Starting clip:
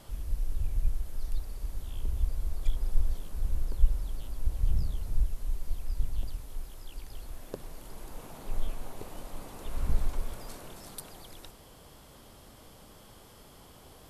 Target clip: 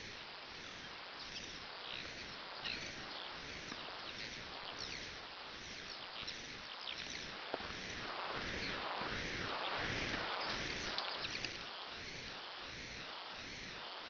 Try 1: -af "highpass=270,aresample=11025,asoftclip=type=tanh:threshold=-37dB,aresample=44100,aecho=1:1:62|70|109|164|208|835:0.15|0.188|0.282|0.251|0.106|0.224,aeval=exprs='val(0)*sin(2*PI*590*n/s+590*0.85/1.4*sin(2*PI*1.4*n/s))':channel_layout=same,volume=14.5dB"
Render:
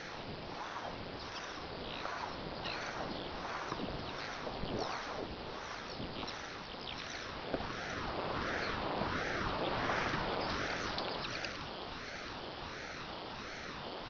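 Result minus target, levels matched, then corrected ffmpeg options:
250 Hz band +5.0 dB
-af "highpass=980,aresample=11025,asoftclip=type=tanh:threshold=-37dB,aresample=44100,aecho=1:1:62|70|109|164|208|835:0.15|0.188|0.282|0.251|0.106|0.224,aeval=exprs='val(0)*sin(2*PI*590*n/s+590*0.85/1.4*sin(2*PI*1.4*n/s))':channel_layout=same,volume=14.5dB"

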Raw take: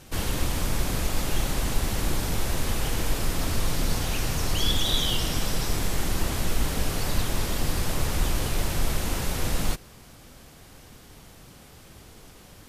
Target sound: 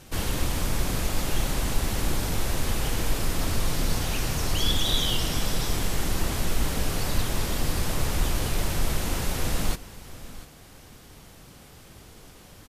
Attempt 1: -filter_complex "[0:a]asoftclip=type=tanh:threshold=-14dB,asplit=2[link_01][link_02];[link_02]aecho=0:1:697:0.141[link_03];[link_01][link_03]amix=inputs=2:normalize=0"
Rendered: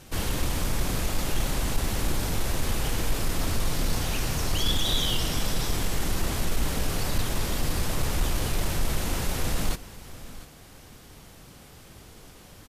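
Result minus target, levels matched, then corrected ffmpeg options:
soft clipping: distortion +18 dB
-filter_complex "[0:a]asoftclip=type=tanh:threshold=-4dB,asplit=2[link_01][link_02];[link_02]aecho=0:1:697:0.141[link_03];[link_01][link_03]amix=inputs=2:normalize=0"

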